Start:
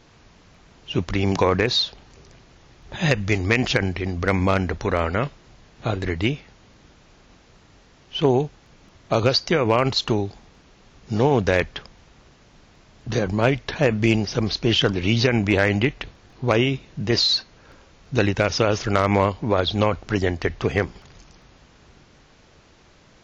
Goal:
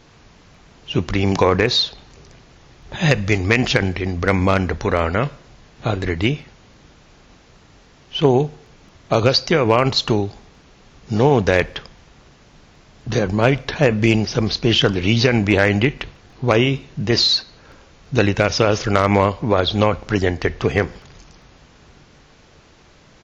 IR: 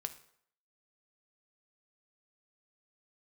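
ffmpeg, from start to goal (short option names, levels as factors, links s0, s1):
-filter_complex "[0:a]asplit=2[s0][s1];[s1]adelay=150,highpass=300,lowpass=3400,asoftclip=type=hard:threshold=0.168,volume=0.0316[s2];[s0][s2]amix=inputs=2:normalize=0,asplit=2[s3][s4];[1:a]atrim=start_sample=2205[s5];[s4][s5]afir=irnorm=-1:irlink=0,volume=0.631[s6];[s3][s6]amix=inputs=2:normalize=0"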